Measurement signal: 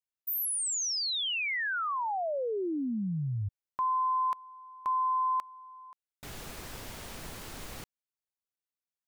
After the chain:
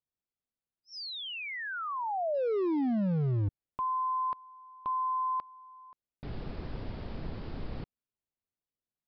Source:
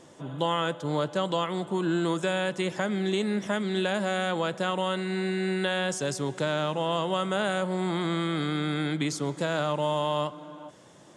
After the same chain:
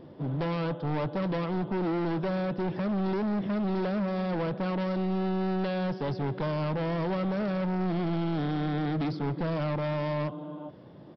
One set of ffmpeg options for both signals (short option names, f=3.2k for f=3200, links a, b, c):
-af "tiltshelf=f=740:g=8.5,aresample=11025,asoftclip=type=hard:threshold=-27dB,aresample=44100"